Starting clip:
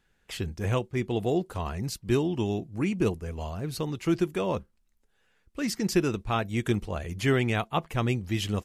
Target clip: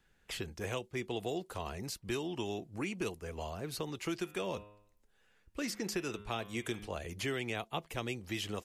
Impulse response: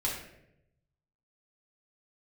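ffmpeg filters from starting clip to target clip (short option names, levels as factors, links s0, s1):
-filter_complex "[0:a]asplit=3[s0][s1][s2];[s0]afade=t=out:st=4.24:d=0.02[s3];[s1]bandreject=f=103.5:t=h:w=4,bandreject=f=207:t=h:w=4,bandreject=f=310.5:t=h:w=4,bandreject=f=414:t=h:w=4,bandreject=f=517.5:t=h:w=4,bandreject=f=621:t=h:w=4,bandreject=f=724.5:t=h:w=4,bandreject=f=828:t=h:w=4,bandreject=f=931.5:t=h:w=4,bandreject=f=1035:t=h:w=4,bandreject=f=1138.5:t=h:w=4,bandreject=f=1242:t=h:w=4,bandreject=f=1345.5:t=h:w=4,bandreject=f=1449:t=h:w=4,bandreject=f=1552.5:t=h:w=4,bandreject=f=1656:t=h:w=4,bandreject=f=1759.5:t=h:w=4,bandreject=f=1863:t=h:w=4,bandreject=f=1966.5:t=h:w=4,bandreject=f=2070:t=h:w=4,bandreject=f=2173.5:t=h:w=4,bandreject=f=2277:t=h:w=4,bandreject=f=2380.5:t=h:w=4,bandreject=f=2484:t=h:w=4,bandreject=f=2587.5:t=h:w=4,bandreject=f=2691:t=h:w=4,bandreject=f=2794.5:t=h:w=4,bandreject=f=2898:t=h:w=4,bandreject=f=3001.5:t=h:w=4,bandreject=f=3105:t=h:w=4,bandreject=f=3208.5:t=h:w=4,bandreject=f=3312:t=h:w=4,bandreject=f=3415.5:t=h:w=4,bandreject=f=3519:t=h:w=4,bandreject=f=3622.5:t=h:w=4,bandreject=f=3726:t=h:w=4,afade=t=in:st=4.24:d=0.02,afade=t=out:st=6.86:d=0.02[s4];[s2]afade=t=in:st=6.86:d=0.02[s5];[s3][s4][s5]amix=inputs=3:normalize=0,acrossover=split=330|730|2300[s6][s7][s8][s9];[s6]acompressor=threshold=0.00562:ratio=4[s10];[s7]acompressor=threshold=0.0126:ratio=4[s11];[s8]acompressor=threshold=0.00501:ratio=4[s12];[s9]acompressor=threshold=0.0112:ratio=4[s13];[s10][s11][s12][s13]amix=inputs=4:normalize=0,volume=0.891"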